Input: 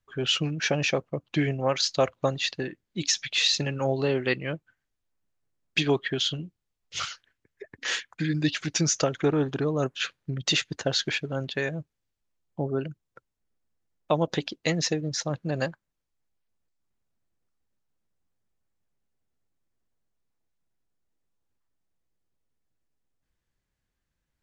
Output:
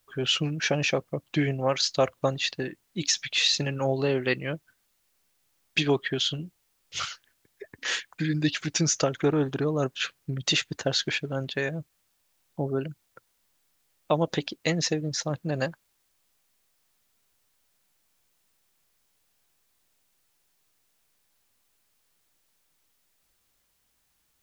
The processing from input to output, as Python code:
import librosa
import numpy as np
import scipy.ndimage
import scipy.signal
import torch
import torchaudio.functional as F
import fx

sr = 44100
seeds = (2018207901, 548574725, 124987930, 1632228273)

y = fx.quant_dither(x, sr, seeds[0], bits=12, dither='triangular')